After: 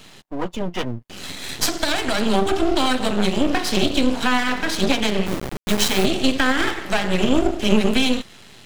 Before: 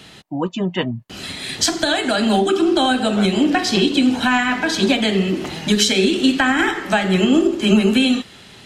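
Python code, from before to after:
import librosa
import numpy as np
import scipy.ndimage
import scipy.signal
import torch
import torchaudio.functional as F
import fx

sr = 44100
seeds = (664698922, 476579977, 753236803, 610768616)

y = fx.delta_hold(x, sr, step_db=-18.5, at=(5.25, 6.04), fade=0.02)
y = np.maximum(y, 0.0)
y = y * librosa.db_to_amplitude(1.0)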